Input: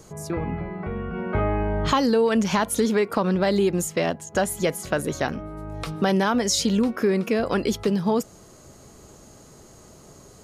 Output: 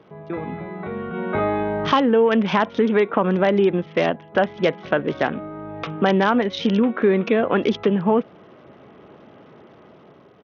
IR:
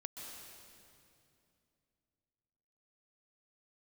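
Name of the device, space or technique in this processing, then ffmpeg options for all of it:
Bluetooth headset: -af "highpass=180,dynaudnorm=f=340:g=5:m=5dB,aresample=8000,aresample=44100" -ar 48000 -c:a sbc -b:a 64k

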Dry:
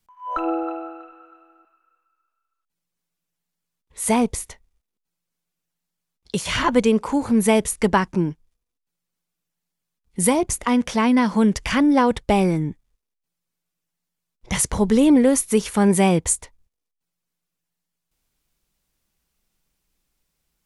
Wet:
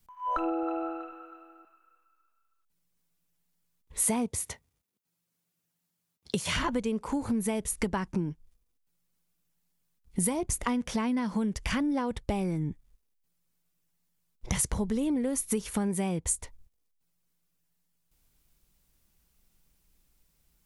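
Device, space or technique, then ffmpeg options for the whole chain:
ASMR close-microphone chain: -filter_complex "[0:a]asettb=1/sr,asplit=3[a][b][c];[a]atrim=end=4.034[d];[b]atrim=start=4.03:end=6.57,asetpts=PTS-STARTPTS,afade=t=in:d=0.004:c=qsin,afade=t=out:st=2.536:d=0.004:c=qsin,highpass=f=85:w=0.5412,highpass=f=85:w=1.3066[e];[c]atrim=start=6.566[f];[d][e]acrossfade=d=0.004:c1=hsin:c2=qsin[g];[g][f]acrossfade=d=0.004:c1=qsin:c2=hsin,lowshelf=f=200:g=7.5,acompressor=threshold=-27dB:ratio=8,highshelf=f=10k:g=7"

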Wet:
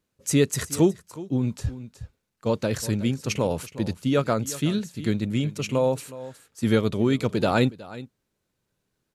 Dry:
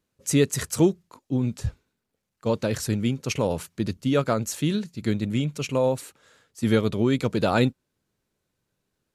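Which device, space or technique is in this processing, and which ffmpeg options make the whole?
ducked delay: -filter_complex "[0:a]asplit=3[a][b][c];[b]adelay=367,volume=-8dB[d];[c]apad=whole_len=419655[e];[d][e]sidechaincompress=threshold=-27dB:ratio=8:attack=28:release=1310[f];[a][f]amix=inputs=2:normalize=0"

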